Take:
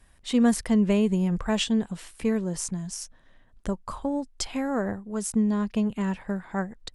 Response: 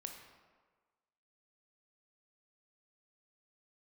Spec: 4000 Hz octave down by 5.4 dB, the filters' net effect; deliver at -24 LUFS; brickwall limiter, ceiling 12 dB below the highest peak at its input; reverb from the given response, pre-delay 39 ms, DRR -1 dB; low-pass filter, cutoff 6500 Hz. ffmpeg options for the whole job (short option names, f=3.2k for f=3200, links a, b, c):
-filter_complex "[0:a]lowpass=6.5k,equalizer=f=4k:t=o:g=-7,alimiter=limit=-22.5dB:level=0:latency=1,asplit=2[a][b];[1:a]atrim=start_sample=2205,adelay=39[c];[b][c]afir=irnorm=-1:irlink=0,volume=4.5dB[d];[a][d]amix=inputs=2:normalize=0,volume=4.5dB"